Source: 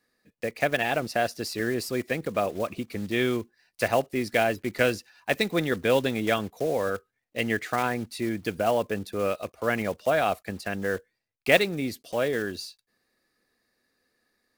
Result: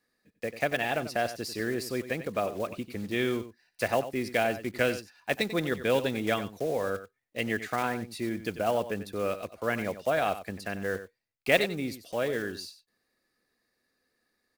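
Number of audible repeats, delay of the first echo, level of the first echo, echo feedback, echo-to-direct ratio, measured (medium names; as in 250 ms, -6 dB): 1, 93 ms, -12.5 dB, no regular repeats, -12.5 dB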